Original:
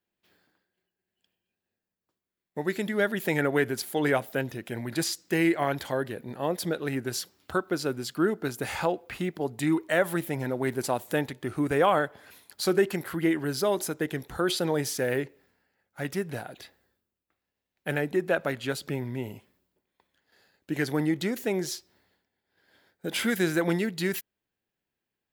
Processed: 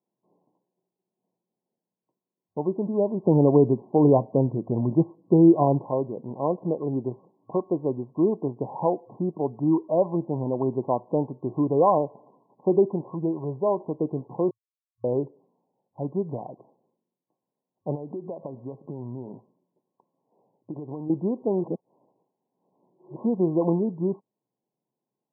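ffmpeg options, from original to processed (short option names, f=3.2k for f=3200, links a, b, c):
-filter_complex "[0:a]asettb=1/sr,asplit=3[a][b][c];[a]atrim=end=3.264[d];[b]atrim=start=3.26:end=5.85,asetpts=PTS-STARTPTS,afade=t=in:d=0.004:c=qsin,afade=t=out:st=2.586:d=0.004:c=qsin,lowshelf=f=410:g=9[e];[c]atrim=start=5.846[f];[d][e]acrossfade=d=0.004:c1=hsin:c2=qsin[g];[g][f]acrossfade=d=0.004:c1=qsin:c2=hsin,asettb=1/sr,asplit=3[h][i][j];[h]atrim=end=13.144[k];[i]atrim=start=13.14:end=13.85,asetpts=PTS-STARTPTS,afade=t=in:d=0.004:c=qsin,afade=t=out:st=0.706:d=0.004:c=qsin,equalizer=f=280:t=o:w=0.69:g=-8.5[l];[j]atrim=start=13.846[m];[k][l]acrossfade=d=0.004:c1=hsin:c2=qsin[n];[n][m]acrossfade=d=0.004:c1=qsin:c2=hsin,asettb=1/sr,asplit=3[o][p][q];[o]atrim=end=17.954[r];[p]atrim=start=17.95:end=21.1,asetpts=PTS-STARTPTS,afade=t=in:d=0.004:c=qsin,afade=t=out:st=3.146:d=0.004:c=qsin,acompressor=threshold=-33dB:ratio=12:attack=3.2:release=140:knee=1:detection=peak[s];[q]atrim=start=21.096[t];[r][s]acrossfade=d=0.004:c1=hsin:c2=qsin[u];[u][t]acrossfade=d=0.004:c1=qsin:c2=hsin,asplit=5[v][w][x][y][z];[v]atrim=end=14.51,asetpts=PTS-STARTPTS,afade=t=out:st=14.506:d=0.004:c=hsin[aa];[w]atrim=start=14.51:end=15.04,asetpts=PTS-STARTPTS,volume=0[ab];[x]atrim=start=15.04:end=21.642,asetpts=PTS-STARTPTS,afade=t=in:d=0.004:c=hsin[ac];[y]atrim=start=21.638:end=23.162,asetpts=PTS-STARTPTS,areverse[ad];[z]atrim=start=23.158[ae];[aa][ab][ac]concat=n=3:v=0:a=1[af];[af][ad]acrossfade=d=0.004:c1=hsin:c2=hsin[ag];[ag][ae]acrossfade=d=0.004:c1=hsin:c2=hsin,afftfilt=real='re*between(b*sr/4096,110,1100)':imag='im*between(b*sr/4096,110,1100)':win_size=4096:overlap=0.75,volume=3.5dB"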